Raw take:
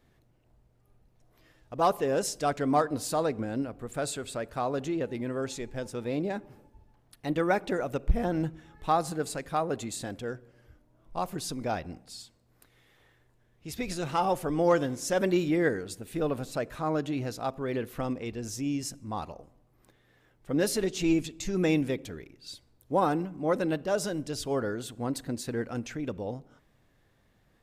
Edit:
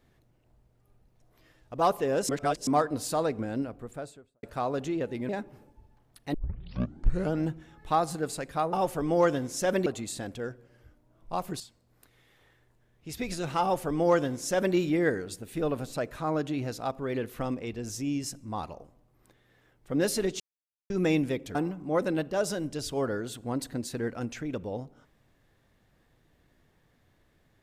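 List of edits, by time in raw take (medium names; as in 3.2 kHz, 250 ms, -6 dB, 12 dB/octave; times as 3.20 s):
2.29–2.67 s: reverse
3.58–4.43 s: studio fade out
5.29–6.26 s: delete
7.31 s: tape start 1.09 s
11.44–12.19 s: delete
14.21–15.34 s: copy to 9.70 s
20.99–21.49 s: mute
22.14–23.09 s: delete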